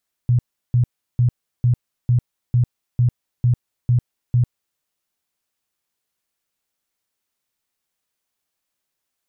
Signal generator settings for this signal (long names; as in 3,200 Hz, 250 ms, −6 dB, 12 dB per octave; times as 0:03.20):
tone bursts 122 Hz, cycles 12, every 0.45 s, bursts 10, −12 dBFS